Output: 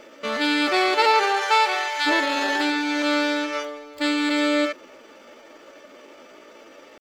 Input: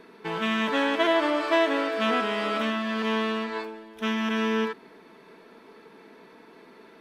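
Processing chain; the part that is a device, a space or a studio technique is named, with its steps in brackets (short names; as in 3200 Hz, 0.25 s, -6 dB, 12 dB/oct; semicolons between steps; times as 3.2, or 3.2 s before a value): 1.23–2.06 HPF 290 Hz -> 780 Hz 12 dB/oct; bell 5400 Hz +5 dB 0.34 oct; chipmunk voice (pitch shift +5 st); gain +4.5 dB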